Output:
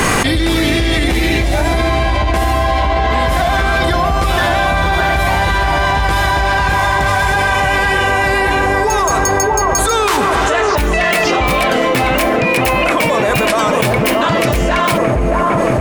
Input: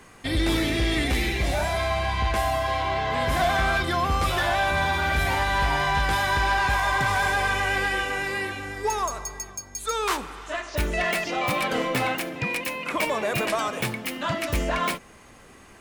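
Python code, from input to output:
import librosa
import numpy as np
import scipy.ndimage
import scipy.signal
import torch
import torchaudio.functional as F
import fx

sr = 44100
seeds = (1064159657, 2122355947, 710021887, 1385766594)

p1 = x + fx.echo_wet_lowpass(x, sr, ms=625, feedback_pct=65, hz=1100.0, wet_db=-4.0, dry=0)
p2 = fx.env_flatten(p1, sr, amount_pct=100)
y = F.gain(torch.from_numpy(p2), 3.0).numpy()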